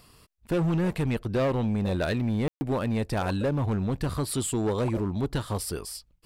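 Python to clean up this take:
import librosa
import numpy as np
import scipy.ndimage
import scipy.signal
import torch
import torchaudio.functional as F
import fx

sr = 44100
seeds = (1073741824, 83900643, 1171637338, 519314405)

y = fx.fix_declip(x, sr, threshold_db=-21.0)
y = fx.fix_ambience(y, sr, seeds[0], print_start_s=0.0, print_end_s=0.5, start_s=2.48, end_s=2.61)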